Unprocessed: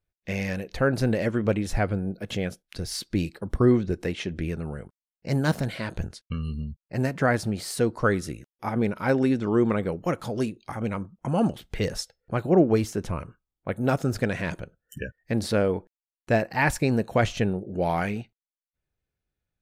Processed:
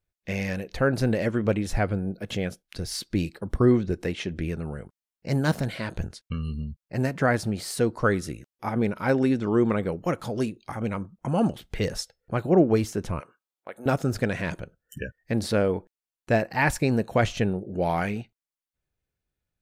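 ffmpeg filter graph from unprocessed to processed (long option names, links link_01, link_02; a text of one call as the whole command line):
ffmpeg -i in.wav -filter_complex "[0:a]asettb=1/sr,asplit=3[link_01][link_02][link_03];[link_01]atrim=end=13.204[link_04];[link_02]atrim=start=13.2:end=13.86,asetpts=PTS-STARTPTS,afade=type=in:duration=0.004:curve=qsin,afade=type=out:start_time=0.656:duration=0.004:curve=qsin,highpass=500,acompressor=threshold=-37dB:ratio=2:attack=3.2:release=140:knee=1:detection=peak[link_05];[link_03]atrim=start=13.856[link_06];[link_04][link_05]acrossfade=duration=0.004:curve1=hsin:curve2=qsin[link_07];[link_07][link_06]acrossfade=duration=0.004:curve1=qsin:curve2=hsin" out.wav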